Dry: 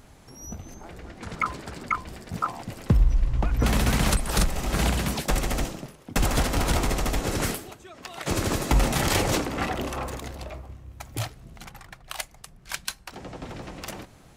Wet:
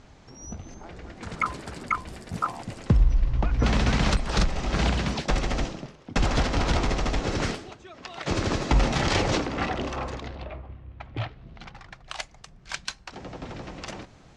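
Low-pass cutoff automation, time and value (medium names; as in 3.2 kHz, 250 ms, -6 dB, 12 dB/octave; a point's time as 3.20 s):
low-pass 24 dB/octave
0.91 s 6.4 kHz
1.52 s 11 kHz
2.53 s 11 kHz
3.11 s 6 kHz
10.11 s 6 kHz
10.51 s 3.3 kHz
11.23 s 3.3 kHz
12.01 s 6.8 kHz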